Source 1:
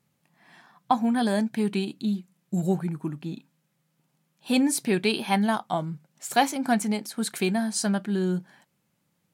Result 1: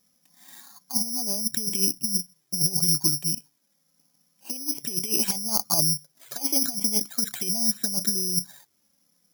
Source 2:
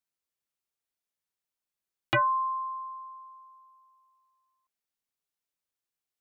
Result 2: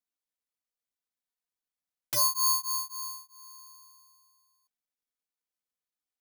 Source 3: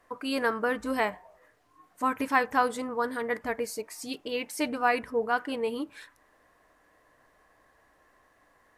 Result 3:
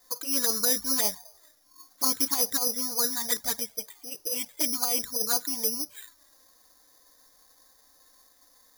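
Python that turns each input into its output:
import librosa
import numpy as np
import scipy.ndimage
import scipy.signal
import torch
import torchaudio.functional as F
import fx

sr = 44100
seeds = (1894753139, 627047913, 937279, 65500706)

y = fx.env_flanger(x, sr, rest_ms=4.0, full_db=-22.0)
y = fx.over_compress(y, sr, threshold_db=-29.0, ratio=-0.5)
y = (np.kron(scipy.signal.resample_poly(y, 1, 8), np.eye(8)[0]) * 8)[:len(y)]
y = F.gain(torch.from_numpy(y), -3.0).numpy()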